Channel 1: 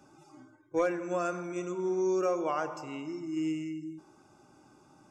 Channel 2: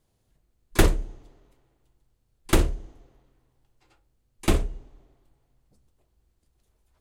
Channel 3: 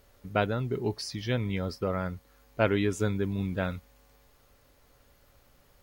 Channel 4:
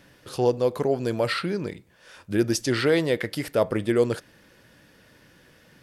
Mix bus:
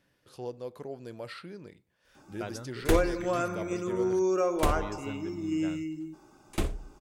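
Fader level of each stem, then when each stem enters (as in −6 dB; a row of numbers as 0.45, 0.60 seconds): +2.0, −8.5, −13.0, −16.5 decibels; 2.15, 2.10, 2.05, 0.00 seconds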